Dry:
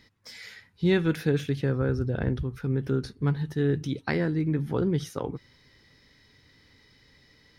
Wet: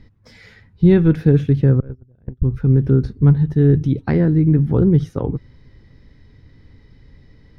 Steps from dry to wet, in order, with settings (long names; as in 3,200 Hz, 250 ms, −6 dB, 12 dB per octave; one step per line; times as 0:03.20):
0:01.80–0:02.42: noise gate −21 dBFS, range −38 dB
spectral tilt −4 dB per octave
level +3 dB